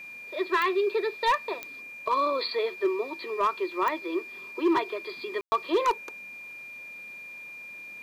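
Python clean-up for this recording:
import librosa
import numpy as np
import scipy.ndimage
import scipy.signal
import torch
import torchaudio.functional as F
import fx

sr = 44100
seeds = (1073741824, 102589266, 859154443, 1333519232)

y = fx.fix_declip(x, sr, threshold_db=-18.0)
y = fx.fix_declick_ar(y, sr, threshold=10.0)
y = fx.notch(y, sr, hz=2400.0, q=30.0)
y = fx.fix_ambience(y, sr, seeds[0], print_start_s=7.5, print_end_s=8.0, start_s=5.41, end_s=5.52)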